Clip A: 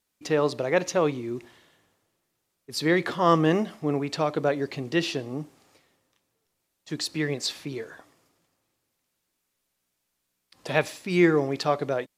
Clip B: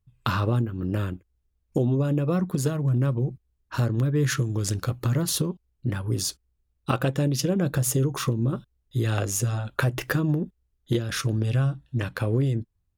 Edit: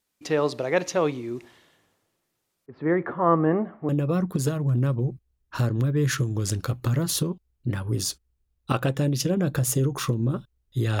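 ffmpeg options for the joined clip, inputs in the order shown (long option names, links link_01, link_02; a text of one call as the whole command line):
ffmpeg -i cue0.wav -i cue1.wav -filter_complex "[0:a]asettb=1/sr,asplit=3[link_01][link_02][link_03];[link_01]atrim=end=2.664[link_04];[link_02]atrim=start=2.66:end=3.89,asetpts=PTS-STARTPTS,afade=type=in:duration=0.004:curve=qsin,afade=type=out:start_time=1.226:duration=0.004:curve=qsin,lowpass=frequency=1600:width=0.5412,lowpass=frequency=1600:width=1.3066[link_05];[link_03]atrim=start=3.886[link_06];[link_04][link_05]acrossfade=duration=0.004:curve1=hsin:curve2=qsin[link_07];[link_07][link_06]acrossfade=duration=0.004:curve1=qsin:curve2=hsin,apad=whole_dur=11,atrim=end=11,atrim=end=3.892[link_08];[1:a]atrim=start=2.078:end=9.19[link_09];[link_08][link_09]acrossfade=duration=0.004:curve1=hsin:curve2=hsin" out.wav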